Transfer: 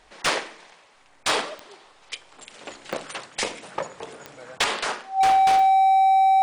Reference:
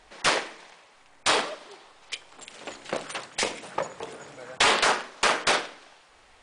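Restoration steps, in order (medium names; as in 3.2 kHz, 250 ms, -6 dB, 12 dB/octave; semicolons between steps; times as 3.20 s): clip repair -14.5 dBFS; de-click; band-stop 770 Hz, Q 30; gain correction +5.5 dB, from 4.64 s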